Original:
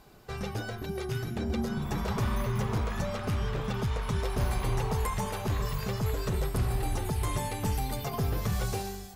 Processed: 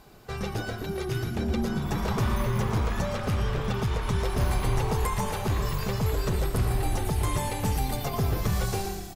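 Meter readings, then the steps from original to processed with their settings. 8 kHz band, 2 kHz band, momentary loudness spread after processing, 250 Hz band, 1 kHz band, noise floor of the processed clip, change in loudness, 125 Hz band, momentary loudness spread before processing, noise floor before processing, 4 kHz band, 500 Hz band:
+3.5 dB, +3.5 dB, 4 LU, +3.5 dB, +3.5 dB, -36 dBFS, +3.5 dB, +3.5 dB, 4 LU, -40 dBFS, +3.5 dB, +3.5 dB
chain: frequency-shifting echo 0.116 s, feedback 47%, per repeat -36 Hz, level -10 dB; gain +3 dB

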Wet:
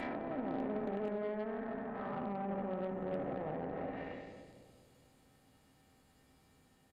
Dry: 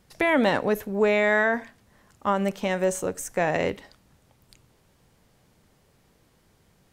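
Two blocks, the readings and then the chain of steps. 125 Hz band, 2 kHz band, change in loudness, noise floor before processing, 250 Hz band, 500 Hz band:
-11.0 dB, -24.0 dB, -15.5 dB, -63 dBFS, -11.0 dB, -14.5 dB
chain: time blur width 0.652 s; dynamic EQ 1400 Hz, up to +6 dB, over -43 dBFS, Q 1.1; resonator 260 Hz, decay 0.16 s, harmonics odd, mix 80%; in parallel at -2.5 dB: limiter -34 dBFS, peak gain reduction 10.5 dB; on the sum: doubler 14 ms -13 dB; compressor 10:1, threshold -34 dBFS, peak gain reduction 6 dB; on a send: split-band echo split 570 Hz, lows 0.208 s, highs 98 ms, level -5 dB; on the sum: treble ducked by the level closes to 670 Hz, closed at -35 dBFS; added harmonics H 6 -22 dB, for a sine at -29 dBFS; bell 5800 Hz -7 dB 0.2 oct; gain +1 dB

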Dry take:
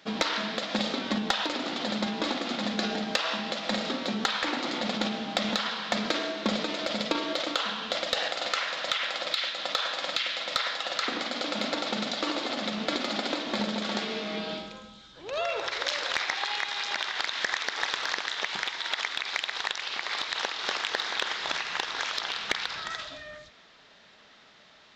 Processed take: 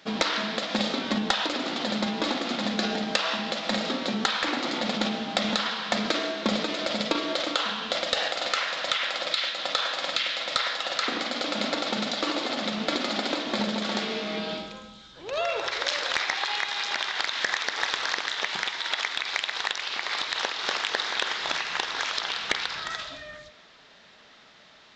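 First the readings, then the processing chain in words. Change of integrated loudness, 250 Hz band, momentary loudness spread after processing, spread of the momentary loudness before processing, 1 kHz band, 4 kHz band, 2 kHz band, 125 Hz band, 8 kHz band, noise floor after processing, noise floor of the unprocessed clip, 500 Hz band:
+2.5 dB, +2.0 dB, 3 LU, 3 LU, +2.0 dB, +2.5 dB, +2.0 dB, +2.0 dB, +2.5 dB, -53 dBFS, -56 dBFS, +2.0 dB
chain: de-hum 101.1 Hz, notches 40; downsampling 22050 Hz; gain +2.5 dB

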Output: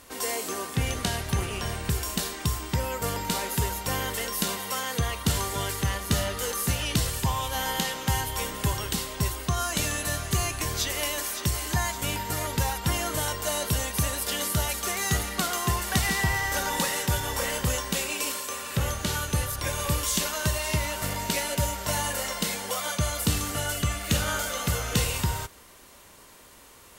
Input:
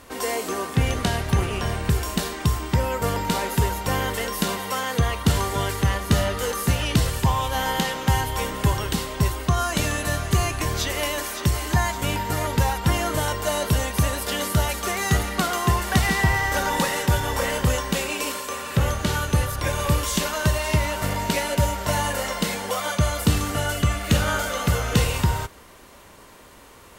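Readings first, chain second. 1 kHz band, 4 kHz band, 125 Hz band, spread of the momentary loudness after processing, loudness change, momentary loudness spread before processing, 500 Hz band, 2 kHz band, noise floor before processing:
-6.0 dB, -1.5 dB, -6.5 dB, 4 LU, -4.0 dB, 4 LU, -6.5 dB, -4.5 dB, -47 dBFS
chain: high shelf 3200 Hz +8.5 dB; gain -6.5 dB

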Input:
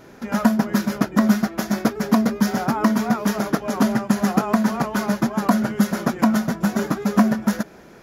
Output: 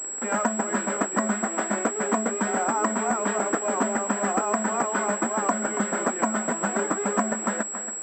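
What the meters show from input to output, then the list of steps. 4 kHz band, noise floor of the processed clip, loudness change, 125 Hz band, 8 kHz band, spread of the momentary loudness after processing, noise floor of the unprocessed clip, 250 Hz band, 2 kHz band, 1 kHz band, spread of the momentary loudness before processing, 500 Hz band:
-11.0 dB, -33 dBFS, -4.5 dB, -13.0 dB, +9.5 dB, 2 LU, -45 dBFS, -10.0 dB, -1.0 dB, -0.5 dB, 5 LU, -0.5 dB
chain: in parallel at -1.5 dB: requantised 6-bit, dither none; on the sum: HPF 140 Hz; three-band isolator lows -23 dB, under 270 Hz, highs -13 dB, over 2900 Hz; on a send: thinning echo 0.279 s, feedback 44%, high-pass 200 Hz, level -15.5 dB; on the sum: compressor 2.5:1, threshold -24 dBFS, peak gain reduction 10 dB; pulse-width modulation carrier 7700 Hz

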